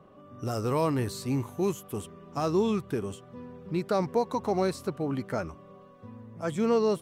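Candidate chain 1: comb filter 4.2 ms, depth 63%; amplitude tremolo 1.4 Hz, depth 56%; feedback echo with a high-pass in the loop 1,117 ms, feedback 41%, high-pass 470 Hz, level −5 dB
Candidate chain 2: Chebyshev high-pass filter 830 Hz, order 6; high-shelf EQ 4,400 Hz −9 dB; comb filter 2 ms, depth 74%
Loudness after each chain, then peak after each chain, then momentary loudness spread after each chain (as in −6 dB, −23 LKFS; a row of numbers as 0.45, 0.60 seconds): −31.0, −38.5 LKFS; −11.0, −21.0 dBFS; 14, 21 LU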